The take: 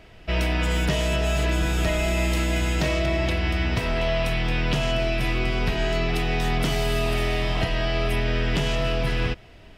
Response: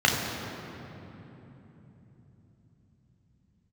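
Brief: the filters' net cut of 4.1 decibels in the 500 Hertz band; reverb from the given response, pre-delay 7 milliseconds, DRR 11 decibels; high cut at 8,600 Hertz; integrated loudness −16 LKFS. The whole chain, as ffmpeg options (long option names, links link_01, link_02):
-filter_complex "[0:a]lowpass=8600,equalizer=frequency=500:width_type=o:gain=-6,asplit=2[link_01][link_02];[1:a]atrim=start_sample=2205,adelay=7[link_03];[link_02][link_03]afir=irnorm=-1:irlink=0,volume=-28.5dB[link_04];[link_01][link_04]amix=inputs=2:normalize=0,volume=9.5dB"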